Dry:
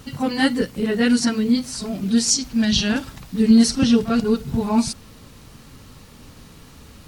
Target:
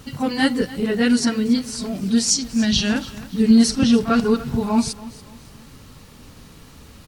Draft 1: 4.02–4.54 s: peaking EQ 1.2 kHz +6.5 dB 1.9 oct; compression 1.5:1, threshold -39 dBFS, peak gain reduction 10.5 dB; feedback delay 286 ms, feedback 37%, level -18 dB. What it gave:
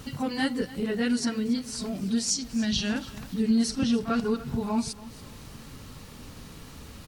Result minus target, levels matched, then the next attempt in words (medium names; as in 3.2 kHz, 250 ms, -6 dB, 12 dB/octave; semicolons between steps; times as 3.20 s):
compression: peak gain reduction +10.5 dB
4.02–4.54 s: peaking EQ 1.2 kHz +6.5 dB 1.9 oct; feedback delay 286 ms, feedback 37%, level -18 dB